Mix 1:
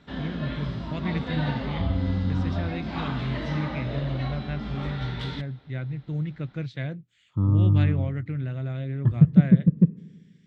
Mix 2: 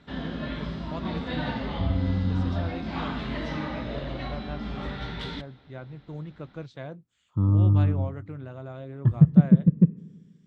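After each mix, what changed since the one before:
first voice: add graphic EQ 125/250/1000/2000/4000 Hz -11/-4/+8/-12/-5 dB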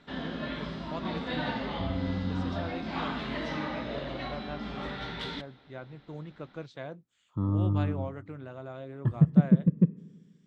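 master: add bell 65 Hz -10 dB 2.6 oct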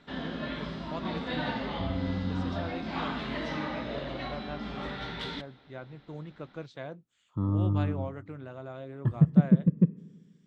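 none

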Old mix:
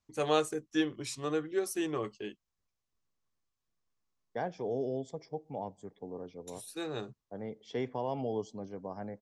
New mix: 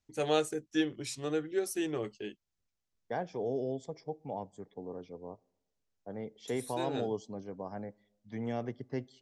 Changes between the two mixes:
first voice: add bell 1100 Hz -10 dB 0.32 oct; second voice: entry -1.25 s

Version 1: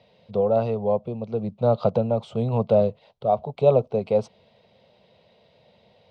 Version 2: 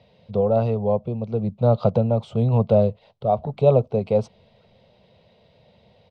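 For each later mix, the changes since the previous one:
second voice: entry +0.65 s; master: add low shelf 140 Hz +11 dB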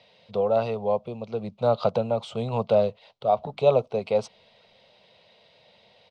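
first voice: add tilt shelf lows -6.5 dB, about 740 Hz; master: add low shelf 140 Hz -11 dB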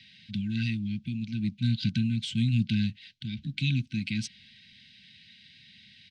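first voice +6.0 dB; master: add brick-wall FIR band-stop 320–1500 Hz

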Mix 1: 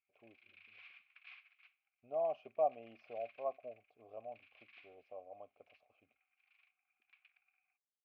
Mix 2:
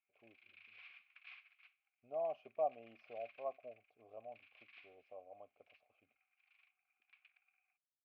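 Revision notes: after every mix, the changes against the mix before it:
speech -3.5 dB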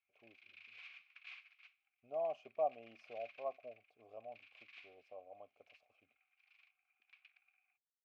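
master: remove air absorption 230 m

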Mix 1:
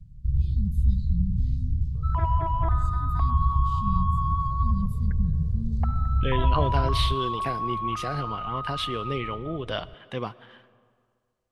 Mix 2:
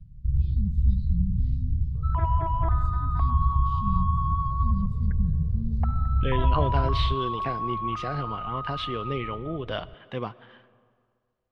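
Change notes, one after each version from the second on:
master: add air absorption 150 m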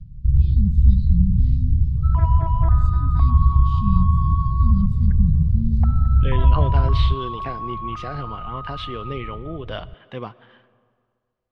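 first sound +8.0 dB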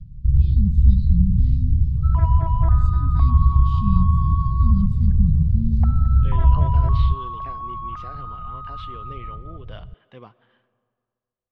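speech -11.0 dB; second sound: send -6.5 dB

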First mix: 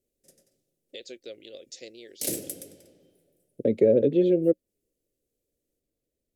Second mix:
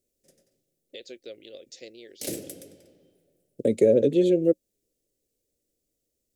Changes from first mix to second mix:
second voice: remove air absorption 320 m; master: add bell 12000 Hz -7 dB 1.4 oct

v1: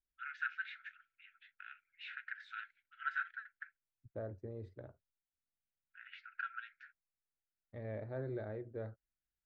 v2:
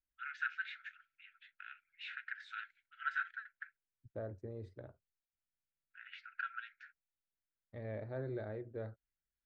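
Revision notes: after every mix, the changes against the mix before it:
master: remove LPF 3500 Hz 6 dB/oct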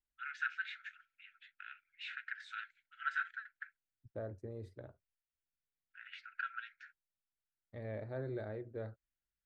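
master: remove air absorption 79 m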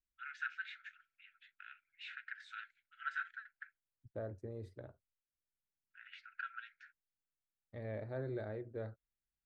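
first voice -3.5 dB

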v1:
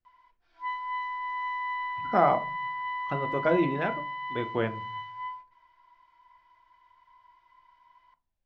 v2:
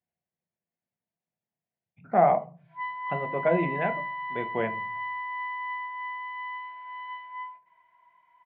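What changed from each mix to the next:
background: entry +2.15 s; master: add speaker cabinet 160–2800 Hz, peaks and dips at 170 Hz +7 dB, 300 Hz -8 dB, 690 Hz +5 dB, 1300 Hz -9 dB, 2000 Hz +3 dB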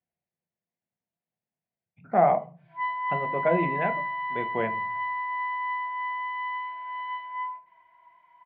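background: send +11.5 dB

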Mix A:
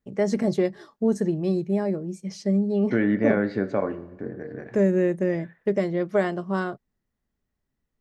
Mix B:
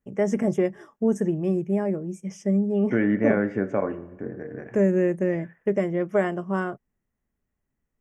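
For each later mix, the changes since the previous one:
master: add Butterworth band-stop 4200 Hz, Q 1.6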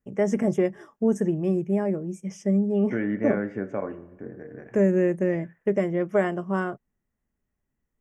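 second voice -5.0 dB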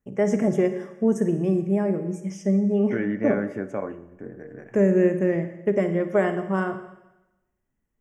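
first voice: send on; second voice: remove air absorption 130 m

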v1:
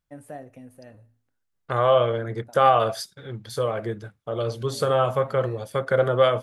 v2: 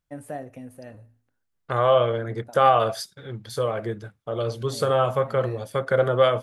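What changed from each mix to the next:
first voice +4.5 dB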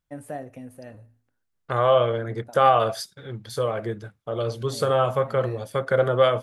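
none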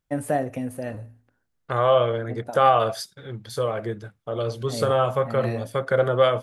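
first voice +10.5 dB

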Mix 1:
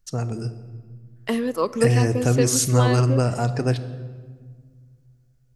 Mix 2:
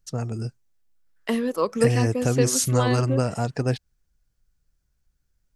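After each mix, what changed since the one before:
reverb: off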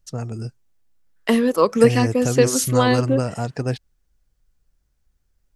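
second voice +7.0 dB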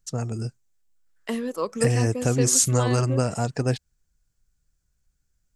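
second voice -11.0 dB; master: add bell 7400 Hz +7 dB 0.5 oct

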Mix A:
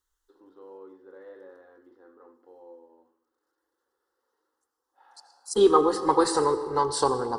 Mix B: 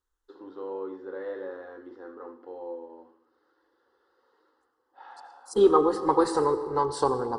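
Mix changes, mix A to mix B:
first voice +11.0 dB; second voice: add high shelf 2200 Hz -9.5 dB

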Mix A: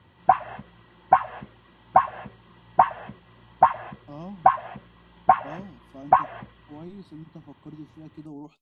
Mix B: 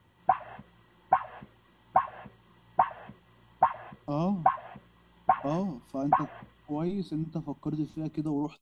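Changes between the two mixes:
speech +10.0 dB; background -7.0 dB

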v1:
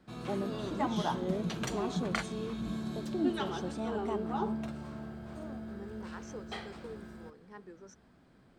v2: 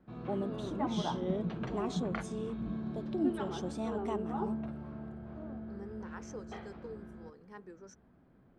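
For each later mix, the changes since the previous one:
background: add tape spacing loss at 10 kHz 40 dB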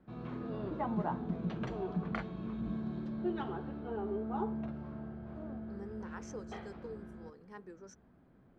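first voice: muted

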